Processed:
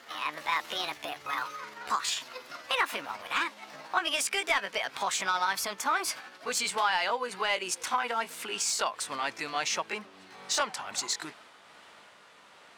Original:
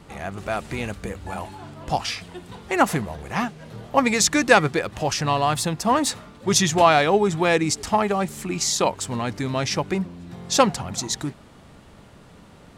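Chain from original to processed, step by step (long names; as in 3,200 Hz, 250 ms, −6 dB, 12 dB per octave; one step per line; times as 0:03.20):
pitch glide at a constant tempo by +7.5 semitones ending unshifted
downward compressor 4 to 1, threshold −24 dBFS, peak gain reduction 12 dB
high-pass filter 1,400 Hz 6 dB per octave
mid-hump overdrive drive 11 dB, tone 2,900 Hz, clips at −12.5 dBFS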